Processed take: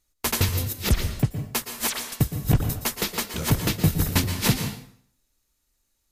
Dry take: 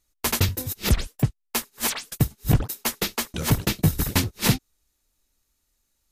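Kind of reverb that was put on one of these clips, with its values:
dense smooth reverb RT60 0.59 s, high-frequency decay 0.9×, pre-delay 105 ms, DRR 7.5 dB
level −1 dB

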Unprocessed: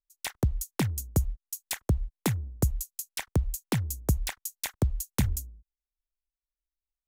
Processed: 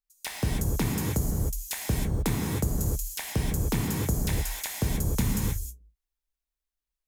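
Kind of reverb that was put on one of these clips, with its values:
reverb whose tail is shaped and stops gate 340 ms flat, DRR −3 dB
level −2 dB

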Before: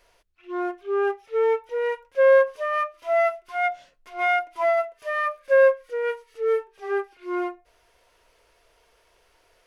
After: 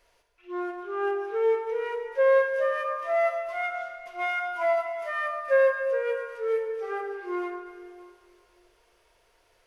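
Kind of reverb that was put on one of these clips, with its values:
dense smooth reverb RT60 2.1 s, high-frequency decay 0.85×, DRR 3.5 dB
level −4.5 dB

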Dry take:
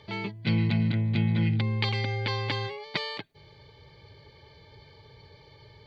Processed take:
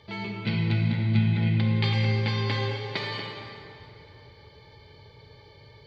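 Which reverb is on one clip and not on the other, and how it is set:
dense smooth reverb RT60 2.9 s, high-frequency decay 0.7×, DRR −1 dB
level −2 dB

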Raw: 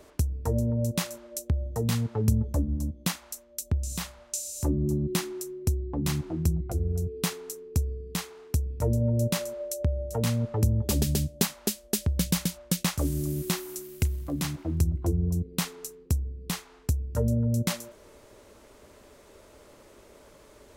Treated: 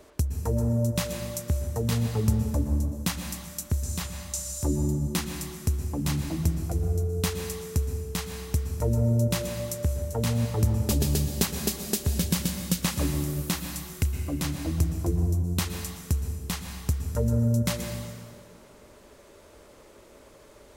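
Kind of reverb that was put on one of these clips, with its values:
dense smooth reverb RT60 1.9 s, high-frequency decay 0.8×, pre-delay 105 ms, DRR 5 dB

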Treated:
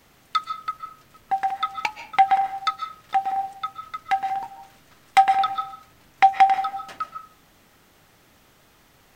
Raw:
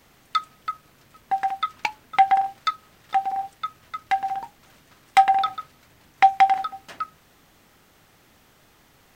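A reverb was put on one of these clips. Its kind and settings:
comb and all-pass reverb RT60 0.45 s, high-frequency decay 0.6×, pre-delay 100 ms, DRR 10 dB

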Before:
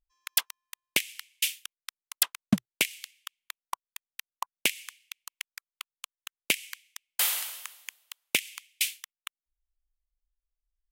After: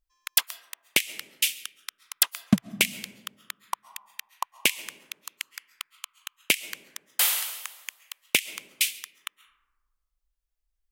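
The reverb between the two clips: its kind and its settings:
comb and all-pass reverb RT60 1.4 s, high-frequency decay 0.3×, pre-delay 95 ms, DRR 17.5 dB
level +3.5 dB

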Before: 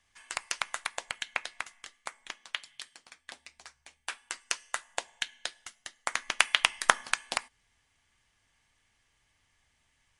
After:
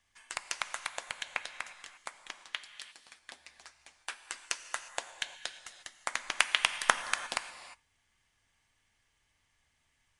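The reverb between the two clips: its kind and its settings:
reverb whose tail is shaped and stops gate 380 ms flat, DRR 10 dB
level −3 dB

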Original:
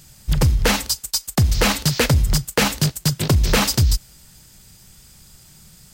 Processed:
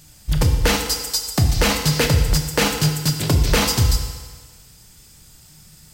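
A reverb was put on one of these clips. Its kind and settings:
feedback delay network reverb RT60 1.5 s, low-frequency decay 0.75×, high-frequency decay 0.95×, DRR 3.5 dB
level −1.5 dB

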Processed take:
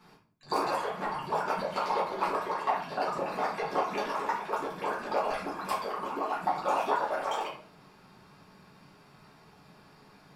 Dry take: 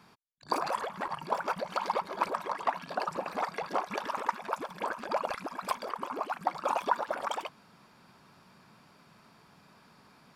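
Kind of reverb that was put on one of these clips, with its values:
rectangular room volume 49 cubic metres, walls mixed, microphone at 1.5 metres
level −6 dB

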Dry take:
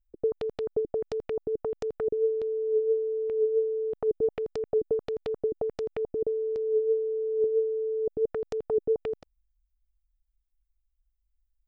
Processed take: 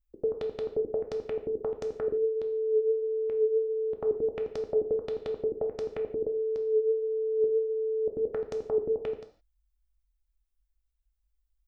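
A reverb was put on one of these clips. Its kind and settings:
reverb whose tail is shaped and stops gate 190 ms falling, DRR 4.5 dB
level −1.5 dB

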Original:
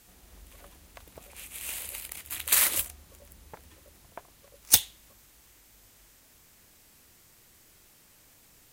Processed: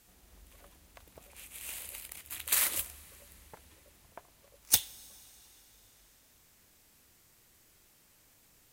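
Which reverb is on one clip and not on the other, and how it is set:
comb and all-pass reverb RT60 4.6 s, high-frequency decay 0.95×, pre-delay 10 ms, DRR 19 dB
level −5.5 dB

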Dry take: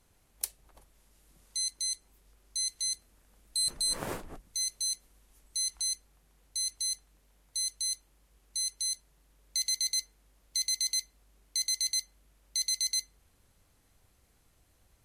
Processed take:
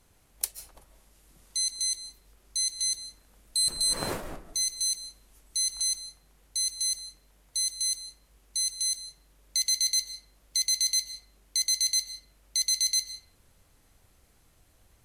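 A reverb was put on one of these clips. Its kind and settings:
comb and all-pass reverb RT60 0.56 s, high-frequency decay 0.6×, pre-delay 105 ms, DRR 10 dB
level +4 dB

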